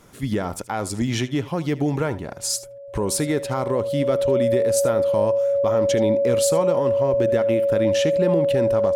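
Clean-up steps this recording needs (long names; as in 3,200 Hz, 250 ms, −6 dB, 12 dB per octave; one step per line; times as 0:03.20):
notch filter 560 Hz, Q 30
echo removal 76 ms −17.5 dB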